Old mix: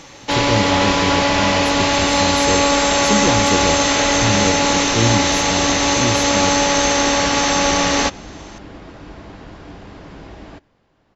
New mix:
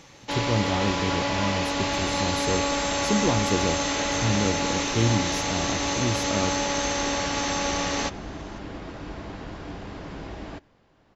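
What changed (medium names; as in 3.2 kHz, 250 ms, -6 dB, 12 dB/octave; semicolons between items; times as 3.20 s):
speech -4.5 dB; first sound -10.5 dB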